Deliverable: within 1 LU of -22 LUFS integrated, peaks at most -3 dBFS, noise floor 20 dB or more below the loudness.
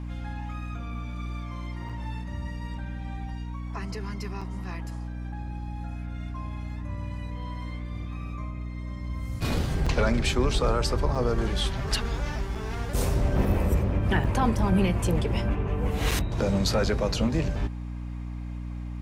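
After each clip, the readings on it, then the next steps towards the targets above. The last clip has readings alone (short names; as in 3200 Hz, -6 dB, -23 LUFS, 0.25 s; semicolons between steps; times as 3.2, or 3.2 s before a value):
dropouts 7; longest dropout 5.3 ms; hum 60 Hz; harmonics up to 300 Hz; hum level -32 dBFS; loudness -29.5 LUFS; peak -11.5 dBFS; loudness target -22.0 LUFS
-> interpolate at 1.89/4.41/9.86/11.15/12.55/14.24/16.11, 5.3 ms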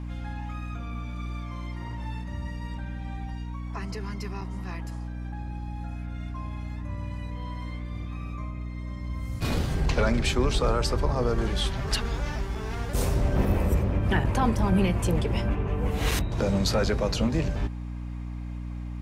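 dropouts 0; hum 60 Hz; harmonics up to 300 Hz; hum level -32 dBFS
-> notches 60/120/180/240/300 Hz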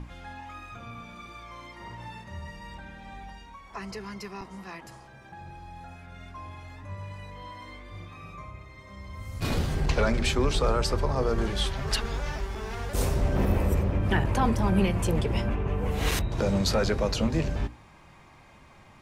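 hum none; loudness -27.5 LUFS; peak -12.0 dBFS; loudness target -22.0 LUFS
-> gain +5.5 dB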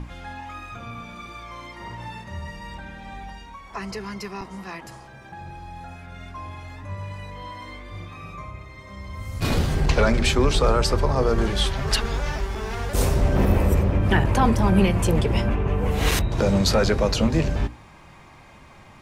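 loudness -22.0 LUFS; peak -6.5 dBFS; noise floor -47 dBFS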